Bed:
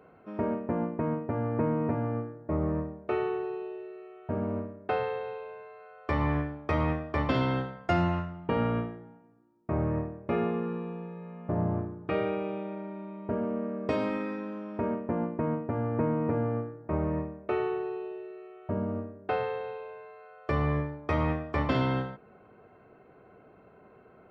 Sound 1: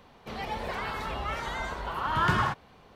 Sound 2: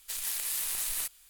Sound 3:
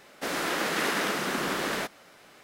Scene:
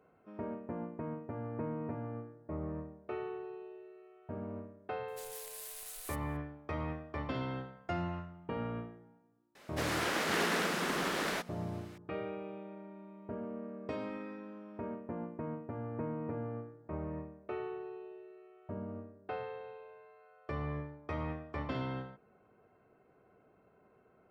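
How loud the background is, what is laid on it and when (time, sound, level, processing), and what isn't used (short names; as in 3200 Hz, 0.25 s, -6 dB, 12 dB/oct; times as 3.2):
bed -10.5 dB
5.08 add 2 -14 dB
9.55 add 3 -4.5 dB + Doppler distortion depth 0.34 ms
not used: 1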